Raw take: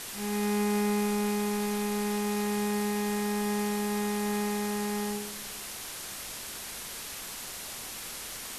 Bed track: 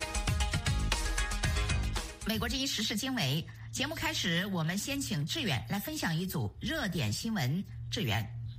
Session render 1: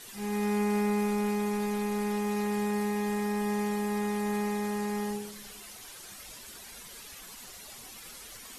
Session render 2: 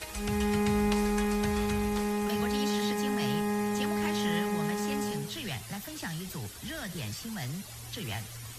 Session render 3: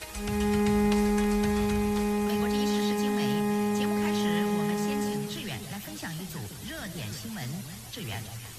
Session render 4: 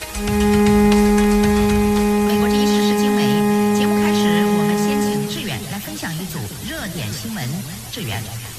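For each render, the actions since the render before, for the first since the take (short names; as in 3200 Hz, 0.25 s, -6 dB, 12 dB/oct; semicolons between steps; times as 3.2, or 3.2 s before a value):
denoiser 11 dB, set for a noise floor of -41 dBFS
add bed track -5 dB
echo with dull and thin repeats by turns 0.159 s, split 830 Hz, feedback 57%, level -7 dB
gain +11 dB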